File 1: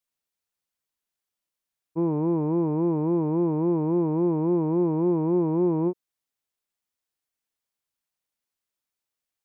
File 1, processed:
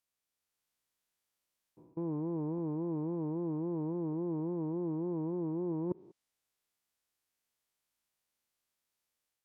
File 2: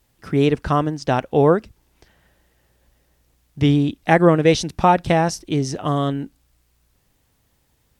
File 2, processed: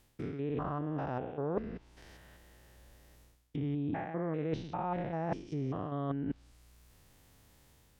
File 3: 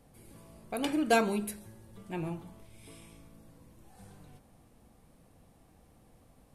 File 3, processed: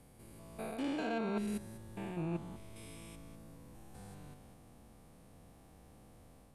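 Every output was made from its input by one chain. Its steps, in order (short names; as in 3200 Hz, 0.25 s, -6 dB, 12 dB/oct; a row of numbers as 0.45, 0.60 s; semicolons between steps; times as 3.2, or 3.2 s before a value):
stepped spectrum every 0.2 s; AGC gain up to 3.5 dB; treble ducked by the level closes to 1900 Hz, closed at -19 dBFS; reverse; compressor 8:1, threshold -33 dBFS; reverse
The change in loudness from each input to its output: -12.0, -18.0, -9.5 LU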